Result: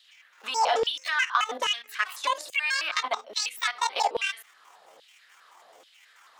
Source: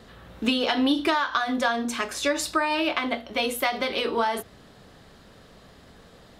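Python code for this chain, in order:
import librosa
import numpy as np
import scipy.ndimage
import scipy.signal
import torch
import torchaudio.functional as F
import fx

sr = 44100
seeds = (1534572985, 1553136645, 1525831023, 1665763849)

y = fx.pitch_trill(x, sr, semitones=10.0, every_ms=108)
y = fx.level_steps(y, sr, step_db=14)
y = fx.hum_notches(y, sr, base_hz=60, count=5)
y = fx.filter_lfo_highpass(y, sr, shape='saw_down', hz=1.2, low_hz=510.0, high_hz=3300.0, q=3.0)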